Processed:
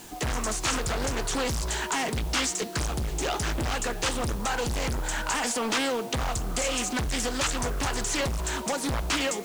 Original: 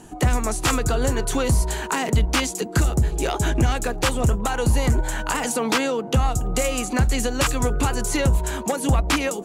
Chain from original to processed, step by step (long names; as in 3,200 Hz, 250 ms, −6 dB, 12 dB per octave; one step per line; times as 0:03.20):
high-shelf EQ 5,300 Hz +6 dB
hum removal 154 Hz, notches 38
gain into a clipping stage and back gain 22 dB
low-pass filter 7,900 Hz 24 dB per octave
bit-depth reduction 8 bits, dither triangular
tilt shelving filter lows −3 dB, about 670 Hz
highs frequency-modulated by the lows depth 0.42 ms
level −2 dB